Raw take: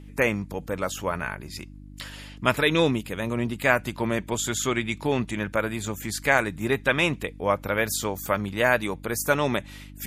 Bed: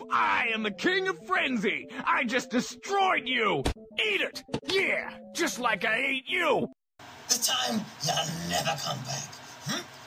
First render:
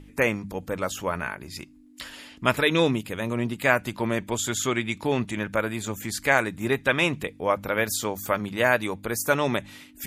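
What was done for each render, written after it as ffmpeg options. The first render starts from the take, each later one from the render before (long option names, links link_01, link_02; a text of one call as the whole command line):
ffmpeg -i in.wav -af "bandreject=frequency=50:width_type=h:width=4,bandreject=frequency=100:width_type=h:width=4,bandreject=frequency=150:width_type=h:width=4,bandreject=frequency=200:width_type=h:width=4" out.wav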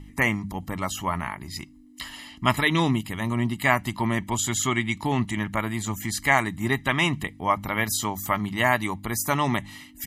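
ffmpeg -i in.wav -af "aecho=1:1:1:0.77" out.wav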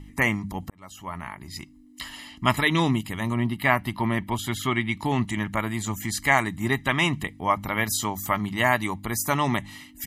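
ffmpeg -i in.wav -filter_complex "[0:a]asettb=1/sr,asplit=3[link_01][link_02][link_03];[link_01]atrim=end=3.344[link_04];[link_02]atrim=start=3.34:end=4.99,asetpts=PTS-STARTPTS,afade=type=in:duration=0.004:curve=qsin,afade=type=out:start_time=1.646:duration=0.004:curve=qsin,equalizer=frequency=7000:width_type=o:width=0.57:gain=-14.5[link_05];[link_03]atrim=start=4.986[link_06];[link_04][link_05]acrossfade=duration=0.004:curve1=hsin:curve2=qsin[link_07];[link_07][link_06]acrossfade=duration=0.004:curve1=qsin:curve2=hsin,asplit=2[link_08][link_09];[link_08]atrim=end=0.7,asetpts=PTS-STARTPTS,afade=type=out:start_time=0.696:duration=0.004:curve=hsin[link_10];[link_09]atrim=start=0.7,asetpts=PTS-STARTPTS,afade=type=in:duration=1.53:curve=qsin[link_11];[link_10][link_11]concat=n=2:v=0:a=1" out.wav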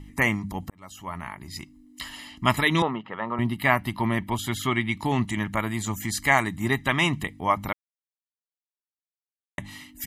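ffmpeg -i in.wav -filter_complex "[0:a]asettb=1/sr,asplit=3[link_01][link_02][link_03];[link_01]atrim=end=2.824[link_04];[link_02]atrim=start=2.82:end=3.39,asetpts=PTS-STARTPTS,afade=type=in:duration=0.004:curve=qsin,afade=type=out:start_time=0.566:duration=0.004:curve=qsin,highpass=280,equalizer=frequency=290:width_type=q:width=4:gain=-8,equalizer=frequency=510:width_type=q:width=4:gain=8,equalizer=frequency=900:width_type=q:width=4:gain=4,equalizer=frequency=1300:width_type=q:width=4:gain=8,equalizer=frequency=2300:width_type=q:width=4:gain=-9,lowpass=frequency=2600:width=0.5412,lowpass=frequency=2600:width=1.3066[link_05];[link_03]atrim=start=3.386[link_06];[link_04][link_05]acrossfade=duration=0.004:curve1=hsin:curve2=qsin[link_07];[link_07][link_06]acrossfade=duration=0.004:curve1=qsin:curve2=hsin,asplit=3[link_08][link_09][link_10];[link_08]atrim=end=7.73,asetpts=PTS-STARTPTS,afade=type=out:start_time=7.726:duration=0.004:curve=hsin[link_11];[link_09]atrim=start=7.73:end=9.58,asetpts=PTS-STARTPTS,volume=0[link_12];[link_10]atrim=start=9.58,asetpts=PTS-STARTPTS,afade=type=in:duration=0.004:curve=hsin[link_13];[link_11][link_12][link_13]concat=n=3:v=0:a=1" out.wav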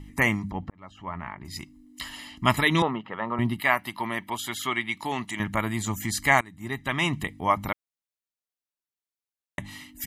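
ffmpeg -i in.wav -filter_complex "[0:a]asettb=1/sr,asplit=3[link_01][link_02][link_03];[link_01]atrim=end=0.504[link_04];[link_02]atrim=start=0.5:end=1.45,asetpts=PTS-STARTPTS,afade=type=in:duration=0.004:curve=qsin,afade=type=out:start_time=0.946:duration=0.004:curve=qsin,lowpass=2500[link_05];[link_03]atrim=start=1.446[link_06];[link_04][link_05]acrossfade=duration=0.004:curve1=hsin:curve2=qsin[link_07];[link_07][link_06]acrossfade=duration=0.004:curve1=qsin:curve2=hsin,asettb=1/sr,asplit=3[link_08][link_09][link_10];[link_08]atrim=end=3.604[link_11];[link_09]atrim=start=3.6:end=5.4,asetpts=PTS-STARTPTS,afade=type=in:duration=0.004:curve=qsin,afade=type=out:start_time=1.796:duration=0.004:curve=qsin,highpass=frequency=610:poles=1[link_12];[link_10]atrim=start=5.396[link_13];[link_11][link_12]acrossfade=duration=0.004:curve1=hsin:curve2=qsin[link_14];[link_14][link_13]acrossfade=duration=0.004:curve1=qsin:curve2=hsin,asplit=2[link_15][link_16];[link_15]atrim=end=6.41,asetpts=PTS-STARTPTS,afade=type=out:start_time=6.406:duration=0.004:curve=hsin:silence=0.0749894[link_17];[link_16]atrim=start=6.41,asetpts=PTS-STARTPTS,afade=type=in:duration=0.88:silence=0.0749894[link_18];[link_17][link_18]concat=n=2:v=0:a=1" out.wav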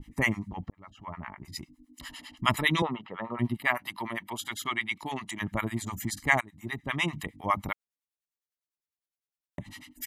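ffmpeg -i in.wav -filter_complex "[0:a]acrossover=split=760[link_01][link_02];[link_01]aeval=exprs='val(0)*(1-1/2+1/2*cos(2*PI*9.9*n/s))':channel_layout=same[link_03];[link_02]aeval=exprs='val(0)*(1-1/2-1/2*cos(2*PI*9.9*n/s))':channel_layout=same[link_04];[link_03][link_04]amix=inputs=2:normalize=0" out.wav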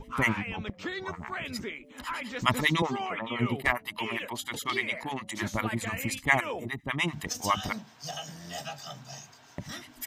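ffmpeg -i in.wav -i bed.wav -filter_complex "[1:a]volume=-10dB[link_01];[0:a][link_01]amix=inputs=2:normalize=0" out.wav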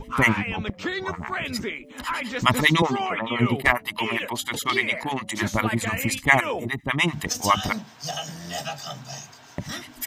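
ffmpeg -i in.wav -af "volume=7dB,alimiter=limit=-1dB:level=0:latency=1" out.wav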